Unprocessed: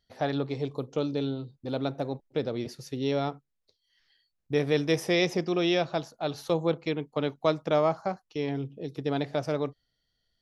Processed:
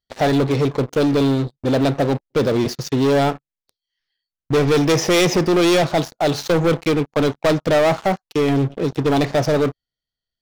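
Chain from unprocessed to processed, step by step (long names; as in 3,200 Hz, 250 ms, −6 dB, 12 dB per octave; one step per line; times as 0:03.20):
elliptic low-pass filter 6,900 Hz
leveller curve on the samples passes 5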